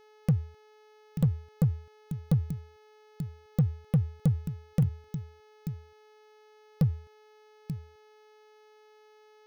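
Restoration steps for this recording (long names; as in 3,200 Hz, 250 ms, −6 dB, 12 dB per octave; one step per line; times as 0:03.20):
clipped peaks rebuilt −17.5 dBFS
hum removal 427.7 Hz, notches 15
echo removal 886 ms −12 dB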